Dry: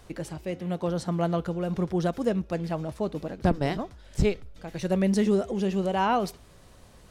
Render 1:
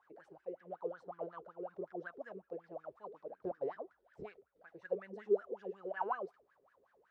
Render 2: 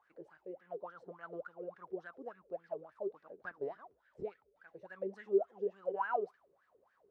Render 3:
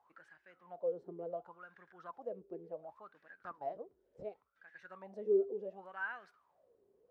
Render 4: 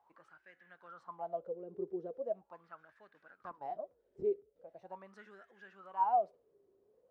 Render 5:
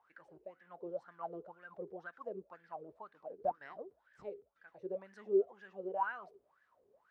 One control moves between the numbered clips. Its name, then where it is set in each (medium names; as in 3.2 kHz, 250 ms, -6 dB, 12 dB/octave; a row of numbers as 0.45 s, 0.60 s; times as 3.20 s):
wah-wah, rate: 5.4 Hz, 3.5 Hz, 0.69 Hz, 0.41 Hz, 2 Hz